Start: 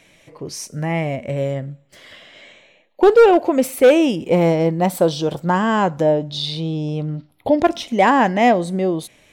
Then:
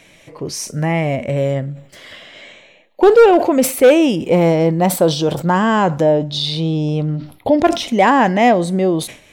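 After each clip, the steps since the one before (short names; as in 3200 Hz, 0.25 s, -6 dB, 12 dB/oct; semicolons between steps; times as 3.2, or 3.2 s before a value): in parallel at -2 dB: limiter -16.5 dBFS, peak gain reduction 11.5 dB; on the sum: sustainer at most 130 dB/s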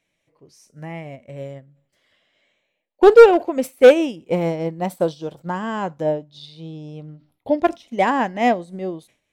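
upward expander 2.5:1, over -24 dBFS; gain +2 dB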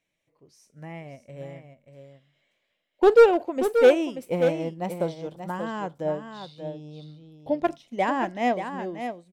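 echo 0.583 s -8.5 dB; gain -6.5 dB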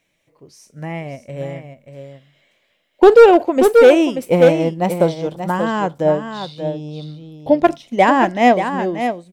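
maximiser +13 dB; gain -1 dB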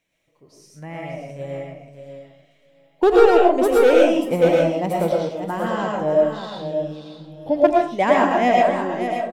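feedback echo 0.63 s, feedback 53%, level -23.5 dB; digital reverb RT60 0.45 s, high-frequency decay 0.5×, pre-delay 70 ms, DRR -2.5 dB; gain -7.5 dB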